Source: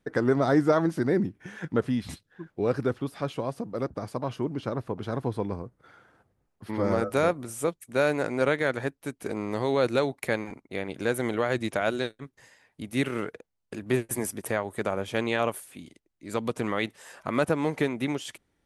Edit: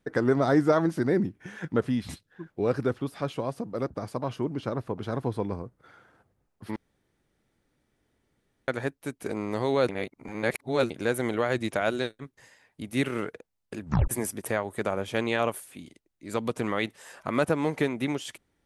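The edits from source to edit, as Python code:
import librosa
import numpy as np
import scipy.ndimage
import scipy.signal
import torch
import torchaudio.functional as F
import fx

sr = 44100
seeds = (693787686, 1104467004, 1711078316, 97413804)

y = fx.edit(x, sr, fx.room_tone_fill(start_s=6.76, length_s=1.92),
    fx.reverse_span(start_s=9.89, length_s=1.01),
    fx.tape_stop(start_s=13.82, length_s=0.26), tone=tone)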